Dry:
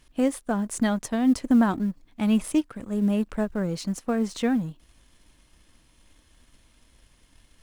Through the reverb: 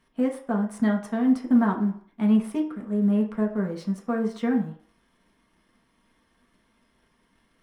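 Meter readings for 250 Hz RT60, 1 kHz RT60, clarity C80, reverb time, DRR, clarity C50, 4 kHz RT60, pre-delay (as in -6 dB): 0.50 s, 0.60 s, 13.0 dB, 0.55 s, -0.5 dB, 9.5 dB, 0.60 s, 3 ms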